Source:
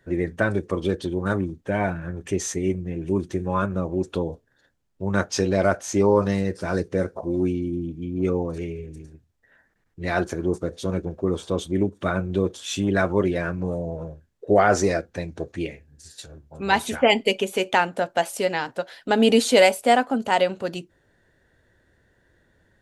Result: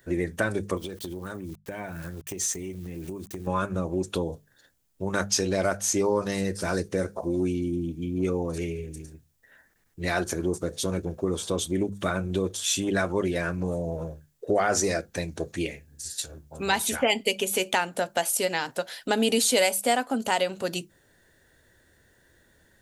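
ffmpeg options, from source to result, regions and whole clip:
-filter_complex "[0:a]asettb=1/sr,asplit=3[a][b][c];[a]atrim=end=0.774[d];[b]atrim=start=0.77:end=3.47,asetpts=PTS-STARTPTS,afade=t=in:d=0.004:c=qsin,afade=t=out:st=2.696:d=0.004:c=qsin,agate=range=-8dB:threshold=-35dB:ratio=16:release=100:detection=peak,aeval=exprs='val(0)*gte(abs(val(0)),0.00422)':c=same,acompressor=threshold=-32dB:ratio=6:attack=3.2:release=140:knee=1:detection=peak[e];[c]atrim=start=3.466[f];[d][e]acrossfade=d=0.004:c1=hsin:c2=qsin[g];[g][f]acrossfade=d=0.004:c1=qsin:c2=hsin,aemphasis=mode=production:type=75kf,bandreject=f=50:t=h:w=6,bandreject=f=100:t=h:w=6,bandreject=f=150:t=h:w=6,bandreject=f=200:t=h:w=6,acompressor=threshold=-25dB:ratio=2"

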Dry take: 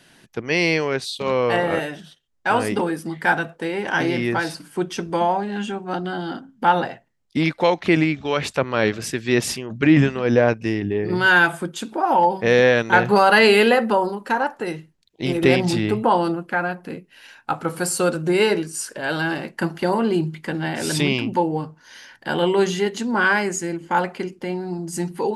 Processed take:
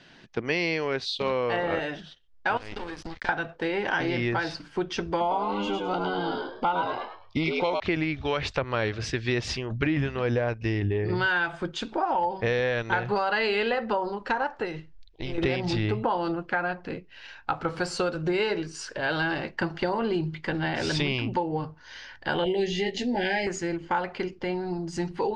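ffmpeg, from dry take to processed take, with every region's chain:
-filter_complex "[0:a]asettb=1/sr,asplit=3[a][b][c];[a]atrim=end=2.574[d];[b]atrim=start=2.57:end=3.29,asetpts=PTS-STARTPTS,afade=t=in:d=0.004:c=qsin,afade=t=out:st=0.716:d=0.004:c=qsin,highshelf=f=2.6k:g=10,acompressor=threshold=-26dB:ratio=16:attack=3.2:release=140:knee=1:detection=peak,aeval=exprs='sgn(val(0))*max(abs(val(0))-0.0178,0)':c=same[e];[c]atrim=start=3.286[f];[d][e]acrossfade=d=0.004:c1=hsin:c2=qsin[g];[g][f]acrossfade=d=0.004:c1=qsin:c2=hsin,asettb=1/sr,asplit=3[h][i][j];[h]atrim=end=5.204[k];[i]atrim=start=5.2:end=7.8,asetpts=PTS-STARTPTS,afade=t=in:d=0.004:c=qsin,afade=t=out:st=2.596:d=0.004:c=qsin,asuperstop=centerf=1700:order=20:qfactor=3.9,asplit=5[l][m][n][o][p];[m]adelay=104,afreqshift=98,volume=-3.5dB[q];[n]adelay=208,afreqshift=196,volume=-14dB[r];[o]adelay=312,afreqshift=294,volume=-24.4dB[s];[p]adelay=416,afreqshift=392,volume=-34.9dB[t];[l][q][r][s][t]amix=inputs=5:normalize=0,atrim=end_sample=114660[u];[j]atrim=start=7.796[v];[k][u]acrossfade=d=0.004:c1=hsin:c2=qsin[w];[w][v]acrossfade=d=0.004:c1=qsin:c2=hsin,asettb=1/sr,asplit=3[x][y][z];[x]atrim=end=14.654[aa];[y]atrim=start=14.65:end=15.38,asetpts=PTS-STARTPTS,afade=t=in:d=0.004:c=qsin,afade=t=out:st=0.726:d=0.004:c=qsin,acompressor=threshold=-28dB:ratio=5:attack=3.2:release=140:knee=1:detection=peak,asubboost=boost=10.5:cutoff=69[ab];[z]atrim=start=15.376[ac];[aa][ab]acrossfade=d=0.004:c1=hsin:c2=qsin[ad];[ad][ac]acrossfade=d=0.004:c1=qsin:c2=hsin,asettb=1/sr,asplit=3[ae][af][ag];[ae]atrim=end=22.444[ah];[af]atrim=start=22.44:end=23.47,asetpts=PTS-STARTPTS,afade=t=in:d=0.004:c=qsin,afade=t=out:st=1.026:d=0.004:c=qsin,asuperstop=centerf=1200:order=8:qfactor=1.3,asplit=2[ai][aj];[aj]adelay=16,volume=-5.5dB[ak];[ai][ak]amix=inputs=2:normalize=0,atrim=end_sample=45423[al];[ag]atrim=start=23.466[am];[ah][al]acrossfade=d=0.004:c1=hsin:c2=qsin[an];[an][am]acrossfade=d=0.004:c1=qsin:c2=hsin,lowpass=f=5.3k:w=0.5412,lowpass=f=5.3k:w=1.3066,asubboost=boost=10.5:cutoff=59,acompressor=threshold=-23dB:ratio=6"

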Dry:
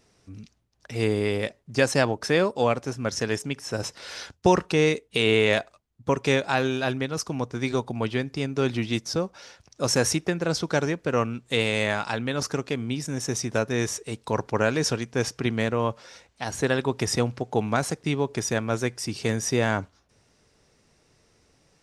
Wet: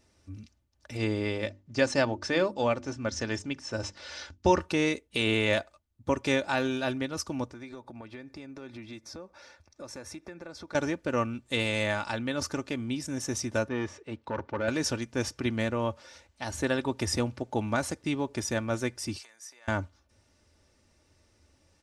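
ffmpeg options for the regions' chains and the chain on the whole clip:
-filter_complex "[0:a]asettb=1/sr,asplit=3[a][b][c];[a]atrim=end=0.974[d];[b]atrim=start=0.97:end=4.61,asetpts=PTS-STARTPTS,afade=t=in:d=0.004:c=qsin,afade=t=out:st=3.636:d=0.004:c=qsin,lowpass=f=7.2k:w=0.5412,lowpass=f=7.2k:w=1.3066,bandreject=f=50:t=h:w=6,bandreject=f=100:t=h:w=6,bandreject=f=150:t=h:w=6,bandreject=f=200:t=h:w=6,bandreject=f=250:t=h:w=6,bandreject=f=300:t=h:w=6,bandreject=f=350:t=h:w=6[e];[c]atrim=start=4.606[f];[d][e]acrossfade=d=0.004:c1=hsin:c2=qsin[g];[g][f]acrossfade=d=0.004:c1=qsin:c2=hsin,asettb=1/sr,asplit=3[h][i][j];[h]atrim=end=7.534[k];[i]atrim=start=7.53:end=10.75,asetpts=PTS-STARTPTS,afade=t=in:d=0.004:c=qsin,afade=t=out:st=3.216:d=0.004:c=qsin,bass=f=250:g=-5,treble=f=4k:g=-7,acompressor=threshold=-37dB:ratio=4:attack=3.2:release=140:knee=1:detection=peak,bandreject=f=3k:w=6.3[l];[j]atrim=start=10.746[m];[k][l]acrossfade=d=0.004:c1=hsin:c2=qsin[n];[n][m]acrossfade=d=0.004:c1=qsin:c2=hsin,asettb=1/sr,asplit=3[o][p][q];[o]atrim=end=13.684[r];[p]atrim=start=13.68:end=14.68,asetpts=PTS-STARTPTS,afade=t=in:d=0.004:c=qsin,afade=t=out:st=0.996:d=0.004:c=qsin,volume=20.5dB,asoftclip=hard,volume=-20.5dB,highpass=110,lowpass=2.6k[s];[q]atrim=start=14.676[t];[r][s]acrossfade=d=0.004:c1=hsin:c2=qsin[u];[u][t]acrossfade=d=0.004:c1=qsin:c2=hsin,asettb=1/sr,asplit=3[v][w][x];[v]atrim=end=19.184[y];[w]atrim=start=19.18:end=19.68,asetpts=PTS-STARTPTS,afade=t=in:d=0.004:c=qsin,afade=t=out:st=0.496:d=0.004:c=qsin,equalizer=f=3k:t=o:w=0.52:g=-6.5,acompressor=threshold=-36dB:ratio=20:attack=3.2:release=140:knee=1:detection=peak,highpass=1.1k[z];[x]atrim=start=19.676[aa];[y][z]acrossfade=d=0.004:c1=hsin:c2=qsin[ab];[ab][aa]acrossfade=d=0.004:c1=qsin:c2=hsin,equalizer=f=82:t=o:w=0.59:g=11.5,aecho=1:1:3.4:0.49,volume=-5dB"

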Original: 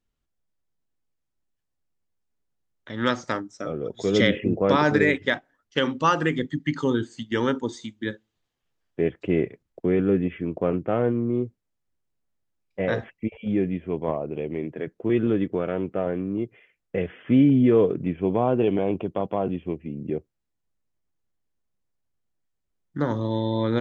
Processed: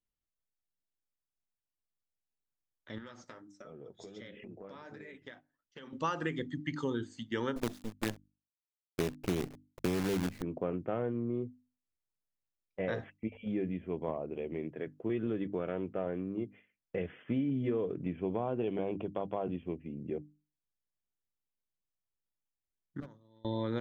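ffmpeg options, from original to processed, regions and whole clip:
-filter_complex "[0:a]asettb=1/sr,asplit=3[a][b][c];[a]atrim=end=2.984[d];[b]atrim=start=2.98:end=5.93,asetpts=PTS-STARTPTS,afade=t=in:d=0.004:c=qsin,afade=t=out:st=2.946:d=0.004:c=qsin,acompressor=threshold=-32dB:ratio=10:attack=3.2:release=140:knee=1:detection=peak,flanger=delay=4.5:depth=7.4:regen=-39:speed=1.4:shape=sinusoidal[e];[c]atrim=start=5.926[f];[d][e]acrossfade=d=0.004:c1=hsin:c2=qsin[g];[g][f]acrossfade=d=0.004:c1=qsin:c2=hsin,asettb=1/sr,asplit=3[h][i][j];[h]atrim=end=7.564[k];[i]atrim=start=7.56:end=10.42,asetpts=PTS-STARTPTS,afade=t=in:d=0.004:c=qsin,afade=t=out:st=2.856:d=0.004:c=qsin,lowshelf=f=320:g=11,adynamicsmooth=sensitivity=7.5:basefreq=4.6k,acrusher=bits=4:dc=4:mix=0:aa=0.000001[l];[j]atrim=start=10.416[m];[k][l]acrossfade=d=0.004:c1=hsin:c2=qsin[n];[n][m]acrossfade=d=0.004:c1=qsin:c2=hsin,asettb=1/sr,asplit=3[o][p][q];[o]atrim=end=23.004[r];[p]atrim=start=23:end=23.45,asetpts=PTS-STARTPTS,afade=t=in:d=0.004:c=qsin,afade=t=out:st=0.446:d=0.004:c=qsin,highshelf=f=4.9k:g=7.5,agate=range=-24dB:threshold=-21dB:ratio=16:release=100:detection=peak,asoftclip=type=hard:threshold=-34dB[s];[q]atrim=start=23.446[t];[r][s]acrossfade=d=0.004:c1=hsin:c2=qsin[u];[u][t]acrossfade=d=0.004:c1=qsin:c2=hsin,agate=range=-6dB:threshold=-46dB:ratio=16:detection=peak,bandreject=f=50:t=h:w=6,bandreject=f=100:t=h:w=6,bandreject=f=150:t=h:w=6,bandreject=f=200:t=h:w=6,bandreject=f=250:t=h:w=6,bandreject=f=300:t=h:w=6,acompressor=threshold=-21dB:ratio=6,volume=-8dB"

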